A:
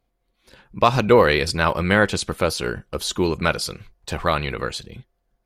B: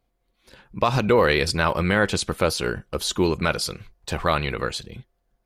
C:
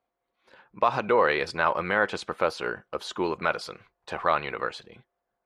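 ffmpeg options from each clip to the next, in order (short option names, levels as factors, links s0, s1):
-af "alimiter=limit=0.422:level=0:latency=1:release=56"
-af "bandpass=f=1000:t=q:w=0.81:csg=0"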